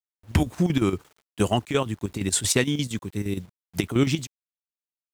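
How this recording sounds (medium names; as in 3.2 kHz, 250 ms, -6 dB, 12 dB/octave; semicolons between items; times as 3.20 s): chopped level 8.6 Hz, depth 65%, duty 70%; a quantiser's noise floor 10-bit, dither none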